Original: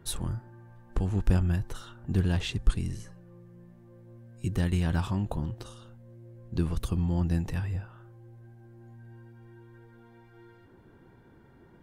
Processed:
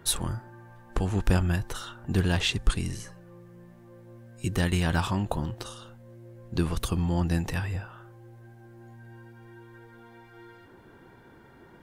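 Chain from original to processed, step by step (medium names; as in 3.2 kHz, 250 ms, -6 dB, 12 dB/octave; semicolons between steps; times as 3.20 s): bass shelf 370 Hz -9 dB; trim +8.5 dB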